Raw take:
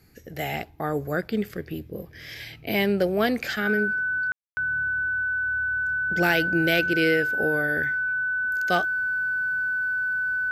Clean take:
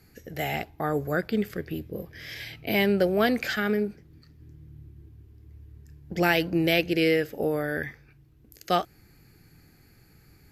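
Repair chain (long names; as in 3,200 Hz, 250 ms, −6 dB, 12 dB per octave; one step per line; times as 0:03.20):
clipped peaks rebuilt −11.5 dBFS
notch filter 1,500 Hz, Q 30
ambience match 0:04.32–0:04.57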